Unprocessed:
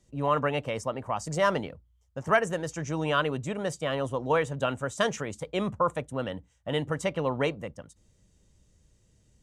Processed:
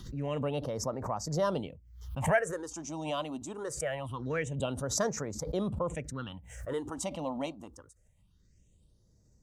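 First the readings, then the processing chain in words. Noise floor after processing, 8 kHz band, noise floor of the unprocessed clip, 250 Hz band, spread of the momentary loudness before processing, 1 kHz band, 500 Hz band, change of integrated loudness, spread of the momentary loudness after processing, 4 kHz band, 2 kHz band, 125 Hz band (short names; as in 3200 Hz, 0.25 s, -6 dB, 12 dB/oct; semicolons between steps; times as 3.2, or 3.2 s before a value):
-66 dBFS, +4.0 dB, -66 dBFS, -3.5 dB, 10 LU, -8.0 dB, -5.0 dB, -5.0 dB, 10 LU, -6.0 dB, -7.0 dB, -3.0 dB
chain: phaser stages 6, 0.24 Hz, lowest notch 110–3000 Hz; backwards sustainer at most 72 dB/s; gain -3.5 dB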